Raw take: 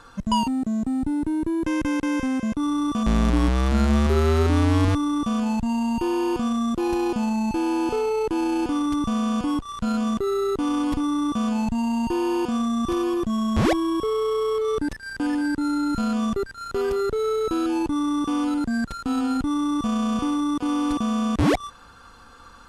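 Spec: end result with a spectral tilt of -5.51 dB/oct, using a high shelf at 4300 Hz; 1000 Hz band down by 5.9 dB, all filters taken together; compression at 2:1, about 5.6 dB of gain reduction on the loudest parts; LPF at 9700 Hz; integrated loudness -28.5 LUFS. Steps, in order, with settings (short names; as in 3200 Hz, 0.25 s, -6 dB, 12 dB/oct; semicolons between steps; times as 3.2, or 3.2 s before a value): LPF 9700 Hz; bell 1000 Hz -8 dB; high shelf 4300 Hz +8.5 dB; compressor 2:1, threshold -26 dBFS; gain -1 dB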